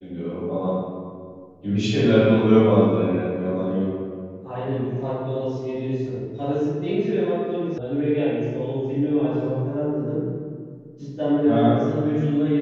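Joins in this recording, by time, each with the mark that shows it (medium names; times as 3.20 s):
7.78 s: sound stops dead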